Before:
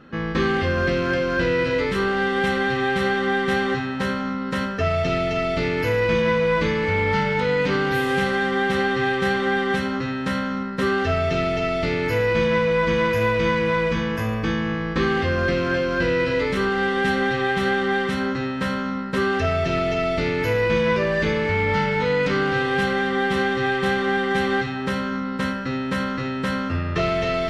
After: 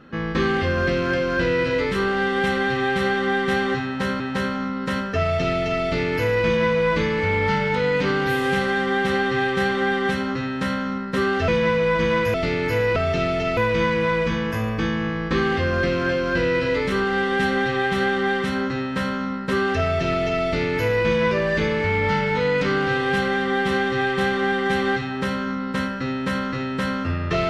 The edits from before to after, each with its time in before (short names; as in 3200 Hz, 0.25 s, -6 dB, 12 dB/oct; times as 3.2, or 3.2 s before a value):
3.85–4.2 loop, 2 plays
11.13–11.74 swap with 12.36–13.22